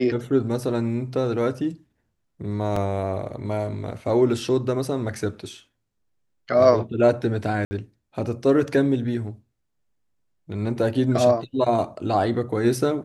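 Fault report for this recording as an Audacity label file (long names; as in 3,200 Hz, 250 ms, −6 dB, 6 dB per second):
2.760000	2.760000	drop-out 3.9 ms
7.650000	7.710000	drop-out 60 ms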